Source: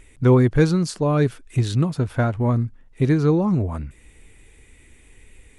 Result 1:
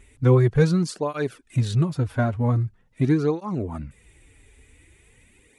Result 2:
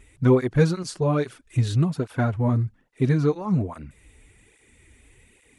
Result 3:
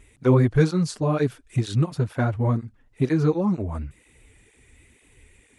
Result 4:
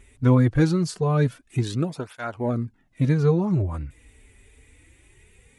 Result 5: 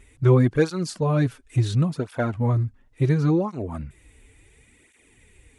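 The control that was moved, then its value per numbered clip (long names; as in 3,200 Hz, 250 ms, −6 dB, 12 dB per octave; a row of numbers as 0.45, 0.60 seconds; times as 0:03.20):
through-zero flanger with one copy inverted, nulls at: 0.44, 1.2, 2.1, 0.23, 0.71 Hertz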